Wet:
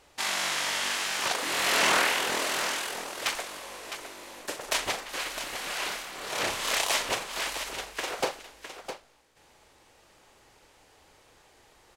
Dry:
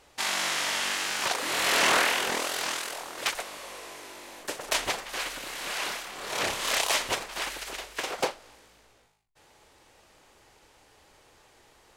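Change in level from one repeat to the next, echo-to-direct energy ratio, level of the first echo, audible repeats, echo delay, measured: repeats not evenly spaced, −7.5 dB, −11.5 dB, 2, 40 ms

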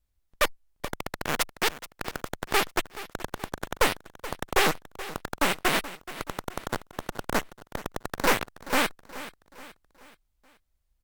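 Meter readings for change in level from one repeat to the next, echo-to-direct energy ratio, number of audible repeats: −7.0 dB, −14.5 dB, 3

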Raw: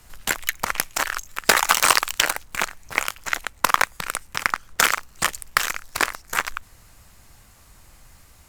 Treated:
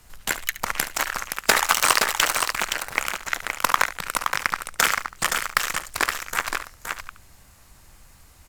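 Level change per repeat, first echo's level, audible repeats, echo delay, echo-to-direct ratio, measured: repeats not evenly spaced, −14.0 dB, 3, 71 ms, −5.0 dB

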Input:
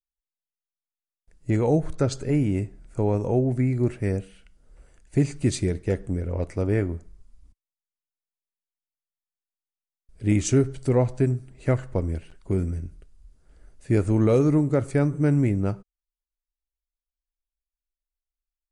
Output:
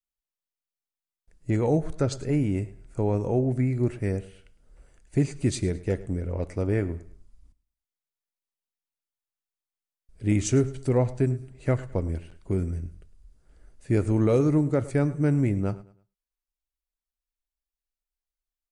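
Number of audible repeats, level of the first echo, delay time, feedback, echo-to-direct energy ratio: 2, −19.0 dB, 107 ms, 31%, −18.5 dB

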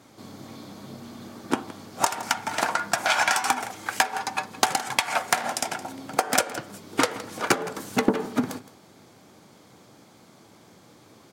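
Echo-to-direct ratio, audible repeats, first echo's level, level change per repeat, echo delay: −17.0 dB, 1, −17.0 dB, repeats not evenly spaced, 166 ms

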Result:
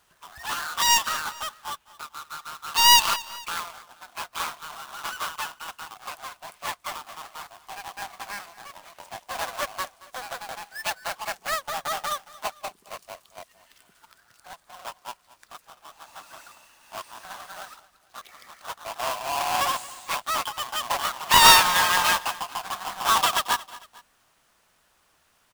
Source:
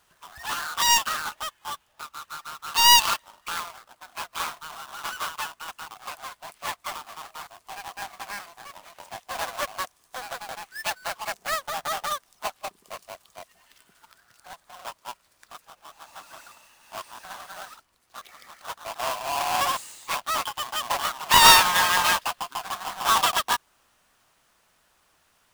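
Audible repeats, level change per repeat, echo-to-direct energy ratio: 2, −6.5 dB, −18.0 dB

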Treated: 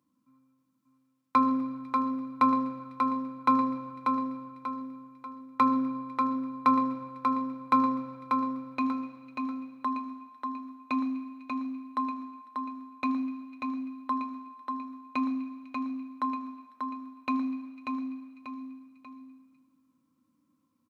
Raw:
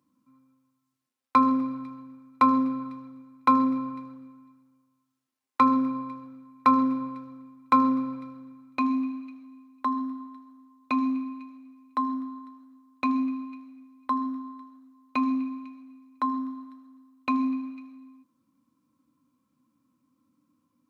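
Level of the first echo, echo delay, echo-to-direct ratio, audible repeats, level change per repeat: −4.5 dB, 589 ms, −3.5 dB, 3, −7.5 dB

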